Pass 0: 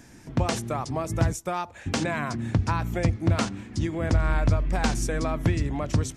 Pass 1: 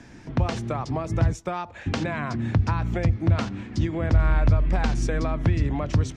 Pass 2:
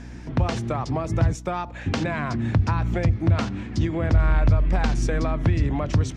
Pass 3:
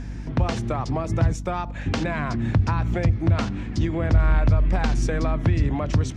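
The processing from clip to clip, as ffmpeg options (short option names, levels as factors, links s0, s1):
-filter_complex "[0:a]lowpass=4500,acrossover=split=140[s0][s1];[s1]acompressor=threshold=0.0355:ratio=6[s2];[s0][s2]amix=inputs=2:normalize=0,volume=1.58"
-filter_complex "[0:a]aeval=exprs='val(0)+0.00891*(sin(2*PI*60*n/s)+sin(2*PI*2*60*n/s)/2+sin(2*PI*3*60*n/s)/3+sin(2*PI*4*60*n/s)/4+sin(2*PI*5*60*n/s)/5)':c=same,asplit=2[s0][s1];[s1]asoftclip=type=tanh:threshold=0.0562,volume=0.355[s2];[s0][s2]amix=inputs=2:normalize=0"
-af "aeval=exprs='val(0)+0.0251*(sin(2*PI*50*n/s)+sin(2*PI*2*50*n/s)/2+sin(2*PI*3*50*n/s)/3+sin(2*PI*4*50*n/s)/4+sin(2*PI*5*50*n/s)/5)':c=same"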